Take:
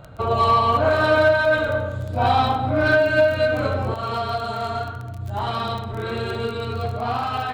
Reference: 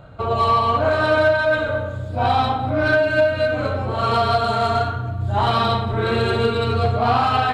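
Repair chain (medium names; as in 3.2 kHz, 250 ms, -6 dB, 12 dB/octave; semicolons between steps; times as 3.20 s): de-click; gain correction +7 dB, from 3.94 s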